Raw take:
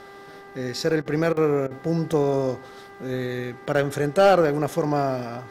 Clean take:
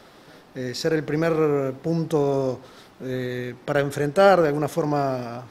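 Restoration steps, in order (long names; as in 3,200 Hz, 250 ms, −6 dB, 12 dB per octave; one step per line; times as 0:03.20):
clipped peaks rebuilt −8.5 dBFS
hum removal 396.8 Hz, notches 5
repair the gap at 0:00.90/0:01.37/0:02.13/0:03.67/0:04.69, 1.8 ms
repair the gap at 0:01.02/0:01.33/0:01.67, 37 ms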